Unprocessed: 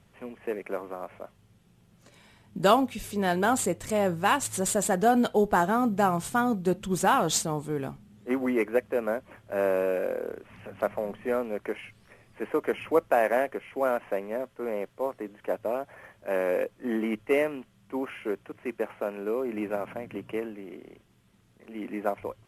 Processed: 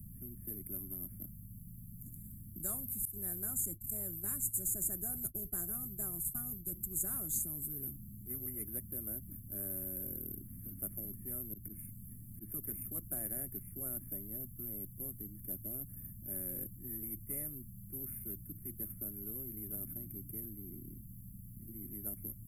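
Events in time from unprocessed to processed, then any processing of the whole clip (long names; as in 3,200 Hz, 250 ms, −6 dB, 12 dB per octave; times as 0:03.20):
0:03.05–0:06.74: downward expander −31 dBFS
0:11.53–0:12.52: volume swells 130 ms
whole clip: inverse Chebyshev band-stop filter 440–5,800 Hz, stop band 60 dB; parametric band 7,000 Hz +6 dB 0.25 octaves; every bin compressed towards the loudest bin 10 to 1; level +13 dB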